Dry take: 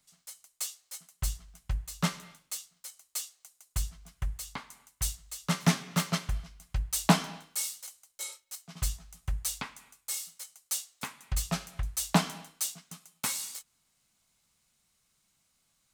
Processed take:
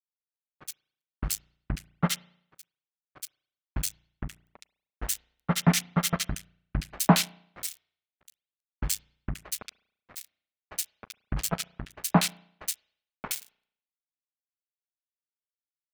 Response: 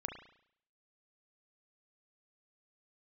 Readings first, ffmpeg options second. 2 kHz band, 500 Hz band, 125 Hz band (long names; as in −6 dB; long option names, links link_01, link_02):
+1.5 dB, +3.5 dB, +2.5 dB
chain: -filter_complex "[0:a]acrusher=bits=3:mix=0:aa=0.5,acrossover=split=1900[link_01][link_02];[link_02]adelay=70[link_03];[link_01][link_03]amix=inputs=2:normalize=0,asplit=2[link_04][link_05];[1:a]atrim=start_sample=2205[link_06];[link_05][link_06]afir=irnorm=-1:irlink=0,volume=-15dB[link_07];[link_04][link_07]amix=inputs=2:normalize=0,volume=2.5dB"